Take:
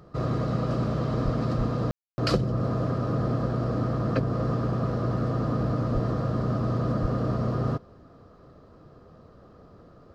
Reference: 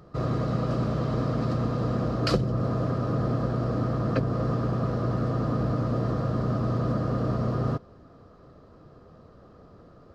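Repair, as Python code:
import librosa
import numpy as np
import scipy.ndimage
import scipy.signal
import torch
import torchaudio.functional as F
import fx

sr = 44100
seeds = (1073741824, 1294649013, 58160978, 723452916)

y = fx.fix_deplosive(x, sr, at_s=(1.24, 1.57, 5.93, 7.01))
y = fx.fix_ambience(y, sr, seeds[0], print_start_s=8.27, print_end_s=8.77, start_s=1.91, end_s=2.18)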